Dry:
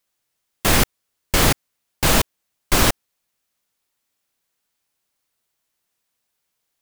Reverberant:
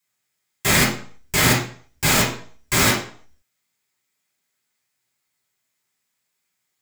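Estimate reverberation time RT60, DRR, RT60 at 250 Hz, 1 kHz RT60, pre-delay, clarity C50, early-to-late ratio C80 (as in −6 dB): 0.50 s, −7.0 dB, 0.45 s, 0.50 s, 3 ms, 5.0 dB, 11.5 dB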